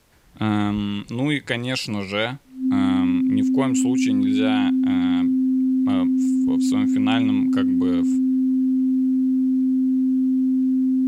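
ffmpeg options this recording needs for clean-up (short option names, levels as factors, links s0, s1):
-af "bandreject=f=260:w=30,agate=range=0.0891:threshold=0.1"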